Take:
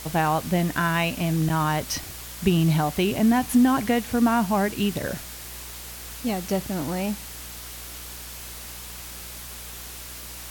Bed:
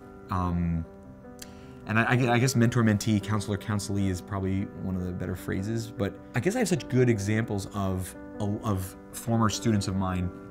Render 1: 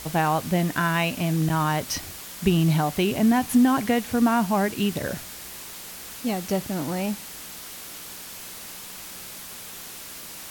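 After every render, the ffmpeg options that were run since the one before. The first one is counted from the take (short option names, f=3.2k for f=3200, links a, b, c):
-af "bandreject=f=60:t=h:w=4,bandreject=f=120:t=h:w=4"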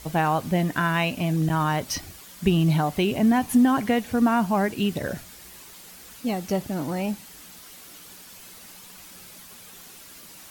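-af "afftdn=nr=8:nf=-40"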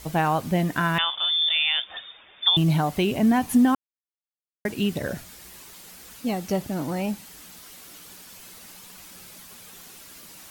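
-filter_complex "[0:a]asettb=1/sr,asplit=3[a][b][c];[a]atrim=end=0.984[d];[b]atrim=start=0.98:end=2.57,asetpts=PTS-STARTPTS,afade=t=in:d=0.004:c=qsin,afade=t=out:st=1.586:d=0.004:c=qsin,lowpass=f=3.1k:t=q:w=0.5098,lowpass=f=3.1k:t=q:w=0.6013,lowpass=f=3.1k:t=q:w=0.9,lowpass=f=3.1k:t=q:w=2.563,afreqshift=-3700[e];[c]atrim=start=2.566[f];[d][e]acrossfade=d=0.004:c1=hsin:c2=qsin[g];[g][f]acrossfade=d=0.004:c1=qsin:c2=hsin,asplit=3[h][i][j];[h]atrim=end=3.75,asetpts=PTS-STARTPTS,afade=t=out:st=3.746:d=0.004:c=hsin[k];[i]atrim=start=3.75:end=4.65,asetpts=PTS-STARTPTS,volume=0[l];[j]atrim=start=4.65,asetpts=PTS-STARTPTS,afade=t=in:d=0.004:c=hsin[m];[k][l][m]concat=n=3:v=0:a=1"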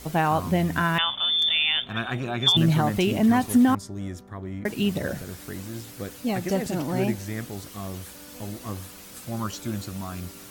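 -filter_complex "[1:a]volume=-6dB[a];[0:a][a]amix=inputs=2:normalize=0"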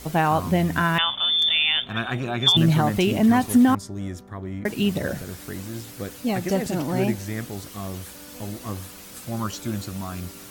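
-af "volume=2dB"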